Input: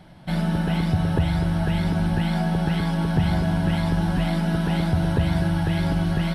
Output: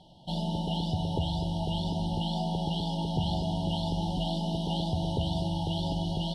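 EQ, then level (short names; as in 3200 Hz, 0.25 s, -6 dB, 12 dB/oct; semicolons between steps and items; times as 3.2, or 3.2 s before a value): brick-wall FIR band-stop 970–2800 Hz; air absorption 88 m; tilt shelf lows -6.5 dB, about 830 Hz; -3.0 dB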